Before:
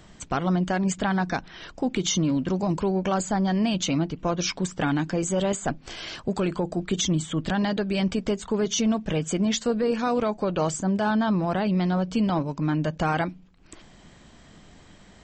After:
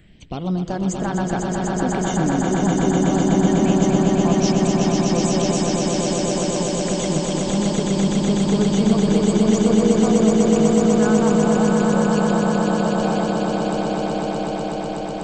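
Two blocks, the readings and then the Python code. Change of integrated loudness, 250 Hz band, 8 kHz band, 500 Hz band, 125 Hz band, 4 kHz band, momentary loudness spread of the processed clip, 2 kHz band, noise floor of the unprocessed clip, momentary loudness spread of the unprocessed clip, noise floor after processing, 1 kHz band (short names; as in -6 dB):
+7.0 dB, +8.0 dB, +5.5 dB, +8.0 dB, +6.5 dB, +3.0 dB, 7 LU, +3.0 dB, -51 dBFS, 5 LU, -27 dBFS, +5.5 dB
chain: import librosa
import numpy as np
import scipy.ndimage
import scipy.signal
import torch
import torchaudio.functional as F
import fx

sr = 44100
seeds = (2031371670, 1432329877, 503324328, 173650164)

y = fx.phaser_stages(x, sr, stages=4, low_hz=180.0, high_hz=4900.0, hz=0.14, feedback_pct=30)
y = fx.echo_swell(y, sr, ms=124, loudest=8, wet_db=-3.5)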